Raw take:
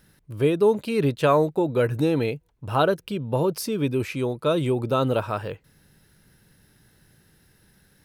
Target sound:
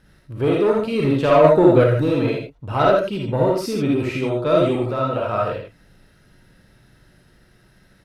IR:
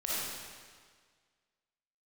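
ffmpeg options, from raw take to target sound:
-filter_complex "[0:a]asoftclip=type=tanh:threshold=-15dB,asettb=1/sr,asplit=3[link_01][link_02][link_03];[link_01]atrim=end=4.754[link_04];[link_02]atrim=start=4.75:end=5.33,asetpts=PTS-STARTPTS,afade=type=in:duration=0.004:curve=qsin,afade=type=out:start_time=0.576:duration=0.004:curve=qsin,acrossover=split=680|2900[link_05][link_06][link_07];[link_05]acompressor=threshold=-30dB:ratio=4[link_08];[link_06]acompressor=threshold=-30dB:ratio=4[link_09];[link_07]acompressor=threshold=-52dB:ratio=4[link_10];[link_08][link_09][link_10]amix=inputs=3:normalize=0[link_11];[link_03]atrim=start=5.326[link_12];[link_04][link_11]acrossfade=duration=0.004:curve1=hsin:curve2=qsin[link_13];[link_13][link_12]acrossfade=duration=0.004:curve1=qsin:curve2=hsin,aemphasis=mode=reproduction:type=50fm,aecho=1:1:83:0.501[link_14];[1:a]atrim=start_sample=2205,atrim=end_sample=3528[link_15];[link_14][link_15]afir=irnorm=-1:irlink=0,asettb=1/sr,asplit=3[link_16][link_17][link_18];[link_16]atrim=end=1.444[link_19];[link_17]atrim=start=1.44:end=1.84,asetpts=PTS-STARTPTS,afade=type=in:duration=0.004:curve=qsin,afade=type=out:start_time=0.396:duration=0.004:curve=qsin,acontrast=49[link_20];[link_18]atrim=start=1.836[link_21];[link_19][link_20]acrossfade=duration=0.004:curve1=hsin:curve2=qsin[link_22];[link_22][link_21]acrossfade=duration=0.004:curve1=qsin:curve2=hsin,volume=4dB"

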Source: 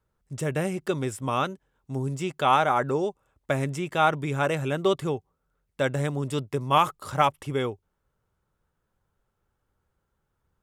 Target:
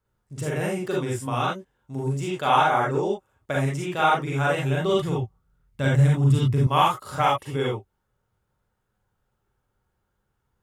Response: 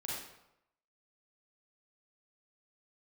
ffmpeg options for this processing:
-filter_complex "[1:a]atrim=start_sample=2205,atrim=end_sample=3969[link_01];[0:a][link_01]afir=irnorm=-1:irlink=0,asettb=1/sr,asplit=3[link_02][link_03][link_04];[link_02]atrim=end=4.364[link_05];[link_03]atrim=start=4.36:end=6.67,asetpts=PTS-STARTPTS,afade=type=in:duration=0.004:curve=qsin,afade=type=out:start_time=2.306:duration=0.004:curve=qsin,asubboost=boost=10:cutoff=190[link_06];[link_04]atrim=start=6.666[link_07];[link_05][link_06]acrossfade=duration=0.004:curve1=hsin:curve2=qsin[link_08];[link_08][link_07]acrossfade=duration=0.004:curve1=qsin:curve2=hsin,volume=2dB"

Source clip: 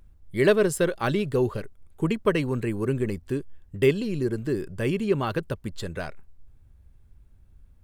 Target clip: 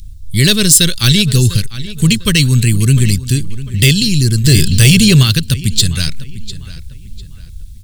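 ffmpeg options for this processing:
ffmpeg -i in.wav -filter_complex "[0:a]firequalizer=gain_entry='entry(110,0);entry(370,-22);entry(740,-30);entry(1200,-21);entry(3800,5);entry(8000,6);entry(12000,3)':delay=0.05:min_phase=1,acrossover=split=590|1200[link_01][link_02][link_03];[link_03]dynaudnorm=framelen=340:gausssize=3:maxgain=4.5dB[link_04];[link_01][link_02][link_04]amix=inputs=3:normalize=0,asplit=2[link_05][link_06];[link_06]adelay=699,lowpass=frequency=3800:poles=1,volume=-15.5dB,asplit=2[link_07][link_08];[link_08]adelay=699,lowpass=frequency=3800:poles=1,volume=0.36,asplit=2[link_09][link_10];[link_10]adelay=699,lowpass=frequency=3800:poles=1,volume=0.36[link_11];[link_05][link_07][link_09][link_11]amix=inputs=4:normalize=0,asettb=1/sr,asplit=3[link_12][link_13][link_14];[link_12]atrim=end=4.444[link_15];[link_13]atrim=start=4.44:end=5.23,asetpts=PTS-STARTPTS,afade=type=in:duration=0.004:curve=qsin,afade=type=out:start_time=0.786:duration=0.004:curve=qsin,acontrast=84[link_16];[link_14]atrim=start=5.226[link_17];[link_15][link_16]acrossfade=duration=0.004:curve1=hsin:curve2=qsin[link_18];[link_18][link_17]acrossfade=duration=0.004:curve1=qsin:curve2=hsin,apsyclip=24dB,volume=-2dB" out.wav

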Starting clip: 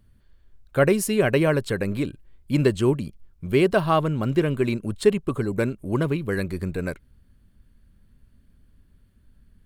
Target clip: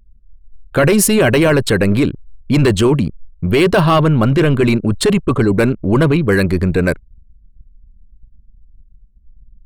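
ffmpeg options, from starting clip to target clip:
ffmpeg -i in.wav -af "apsyclip=22dB,anlmdn=10000,volume=-7dB" out.wav

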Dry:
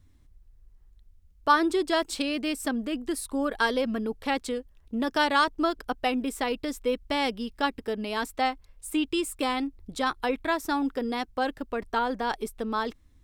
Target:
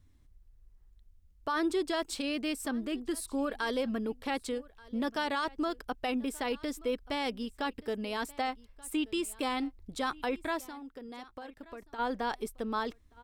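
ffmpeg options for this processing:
ffmpeg -i in.wav -filter_complex "[0:a]alimiter=limit=-19dB:level=0:latency=1:release=26,asplit=3[link_01][link_02][link_03];[link_01]afade=type=out:start_time=10.63:duration=0.02[link_04];[link_02]acompressor=threshold=-39dB:ratio=6,afade=type=in:start_time=10.63:duration=0.02,afade=type=out:start_time=11.98:duration=0.02[link_05];[link_03]afade=type=in:start_time=11.98:duration=0.02[link_06];[link_04][link_05][link_06]amix=inputs=3:normalize=0,asplit=2[link_07][link_08];[link_08]aecho=0:1:1180:0.075[link_09];[link_07][link_09]amix=inputs=2:normalize=0,volume=-4dB" out.wav

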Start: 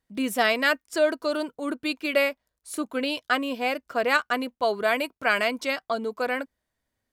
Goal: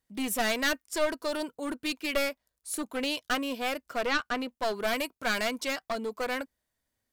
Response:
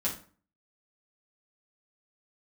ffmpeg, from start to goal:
-filter_complex "[0:a]aeval=exprs='clip(val(0),-1,0.0447)':channel_layout=same,highshelf=frequency=4700:gain=7.5,asettb=1/sr,asplit=3[link_01][link_02][link_03];[link_01]atrim=end=4.064[link_04];[link_02]atrim=start=4.06:end=4.52,asetpts=PTS-STARTPTS,afade=type=in:duration=0.004:curve=qsin,afade=type=out:start_time=0.456:duration=0.004:curve=qsin,acrossover=split=5600[link_05][link_06];[link_06]acompressor=threshold=-53dB:ratio=4:attack=1:release=60[link_07];[link_05][link_07]amix=inputs=2:normalize=0[link_08];[link_03]atrim=start=4.516[link_09];[link_04][link_08]acrossfade=duration=0.004:curve1=hsin:curve2=qsin[link_10];[link_10][link_09]acrossfade=duration=0.004:curve1=qsin:curve2=hsin,volume=-3.5dB"

